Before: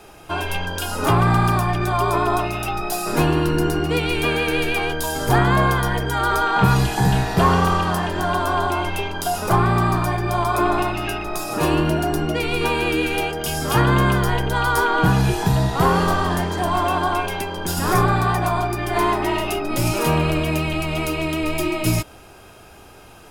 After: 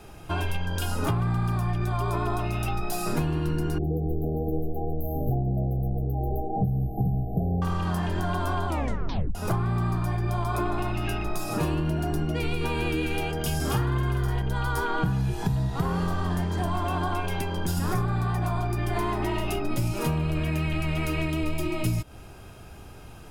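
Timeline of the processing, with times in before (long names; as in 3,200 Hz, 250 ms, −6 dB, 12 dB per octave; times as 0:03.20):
0:03.78–0:07.62: linear-phase brick-wall band-stop 830–12,000 Hz
0:08.67: tape stop 0.68 s
0:13.55–0:14.42: double-tracking delay 48 ms −2.5 dB
0:20.37–0:21.30: parametric band 1,800 Hz +7.5 dB
whole clip: bass and treble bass +10 dB, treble 0 dB; downward compressor, threshold −18 dBFS; level −5 dB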